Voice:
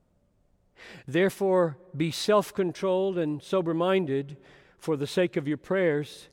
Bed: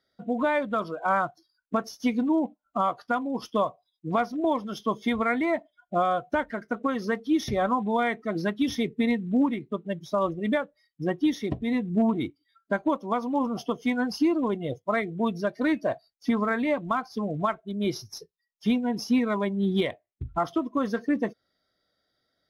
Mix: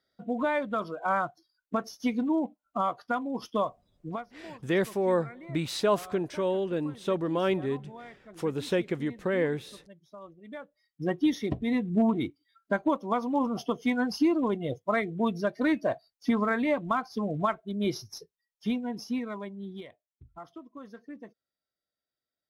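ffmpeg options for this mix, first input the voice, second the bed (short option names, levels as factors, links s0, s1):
-filter_complex "[0:a]adelay=3550,volume=0.75[s0];[1:a]volume=7.08,afade=t=out:st=4.02:d=0.22:silence=0.125893,afade=t=in:st=10.5:d=0.64:silence=0.1,afade=t=out:st=17.76:d=2.08:silence=0.133352[s1];[s0][s1]amix=inputs=2:normalize=0"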